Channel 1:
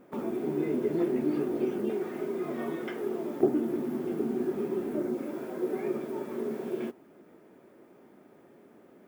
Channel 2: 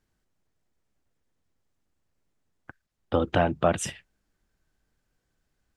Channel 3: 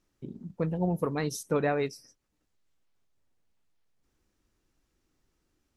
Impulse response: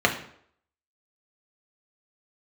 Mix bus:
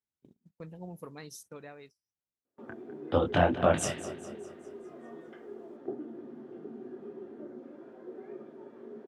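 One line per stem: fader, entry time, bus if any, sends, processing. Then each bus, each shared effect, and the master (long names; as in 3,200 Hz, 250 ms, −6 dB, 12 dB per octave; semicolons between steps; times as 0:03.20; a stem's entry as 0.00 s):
−15.0 dB, 2.45 s, send −22.5 dB, no echo send, Bessel low-pass filter 3,300 Hz, order 2
+2.5 dB, 0.00 s, no send, echo send −14 dB, micro pitch shift up and down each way 58 cents
−15.5 dB, 0.00 s, no send, no echo send, high-shelf EQ 2,500 Hz +10 dB; automatic ducking −16 dB, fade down 1.55 s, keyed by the second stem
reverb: on, RT60 0.65 s, pre-delay 3 ms
echo: repeating echo 203 ms, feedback 50%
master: high-pass filter 73 Hz; noise gate −54 dBFS, range −21 dB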